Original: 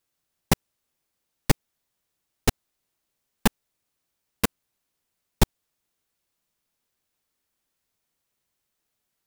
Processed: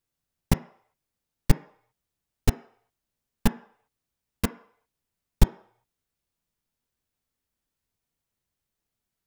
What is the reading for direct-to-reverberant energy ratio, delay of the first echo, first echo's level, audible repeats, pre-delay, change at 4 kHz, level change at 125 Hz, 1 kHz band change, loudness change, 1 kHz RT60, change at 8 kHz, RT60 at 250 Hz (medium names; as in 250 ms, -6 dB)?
10.0 dB, no echo, no echo, no echo, 3 ms, -6.5 dB, +2.0 dB, -5.0 dB, -1.0 dB, 0.65 s, -6.5 dB, 0.40 s